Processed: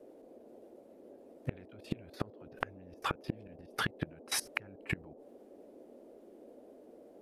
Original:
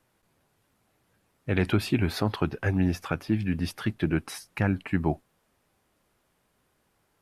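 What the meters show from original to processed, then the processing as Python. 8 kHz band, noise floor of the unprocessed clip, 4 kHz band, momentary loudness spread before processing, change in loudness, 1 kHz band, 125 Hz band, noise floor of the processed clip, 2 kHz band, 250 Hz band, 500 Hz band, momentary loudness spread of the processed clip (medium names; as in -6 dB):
+2.0 dB, -72 dBFS, -4.0 dB, 6 LU, -11.5 dB, -5.5 dB, -16.5 dB, -57 dBFS, -6.0 dB, -17.0 dB, -12.5 dB, 20 LU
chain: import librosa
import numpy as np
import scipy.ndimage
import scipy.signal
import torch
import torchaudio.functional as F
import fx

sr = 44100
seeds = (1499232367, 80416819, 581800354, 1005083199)

y = fx.gate_flip(x, sr, shuts_db=-21.0, range_db=-34)
y = fx.level_steps(y, sr, step_db=22)
y = fx.dmg_noise_band(y, sr, seeds[0], low_hz=230.0, high_hz=620.0, level_db=-67.0)
y = y * 10.0 ** (12.0 / 20.0)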